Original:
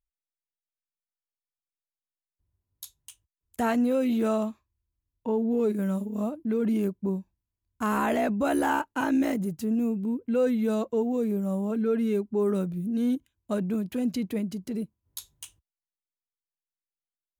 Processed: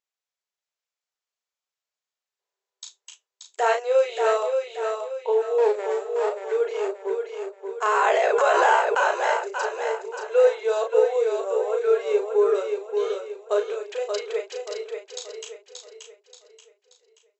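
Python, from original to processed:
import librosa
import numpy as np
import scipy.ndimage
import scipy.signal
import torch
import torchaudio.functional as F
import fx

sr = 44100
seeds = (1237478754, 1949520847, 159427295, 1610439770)

y = fx.lower_of_two(x, sr, delay_ms=0.38, at=(5.58, 6.29))
y = fx.brickwall_bandpass(y, sr, low_hz=380.0, high_hz=7900.0)
y = fx.doubler(y, sr, ms=36.0, db=-5)
y = fx.echo_feedback(y, sr, ms=580, feedback_pct=40, wet_db=-5.5)
y = fx.pre_swell(y, sr, db_per_s=23.0, at=(7.88, 9.07))
y = F.gain(torch.from_numpy(y), 6.0).numpy()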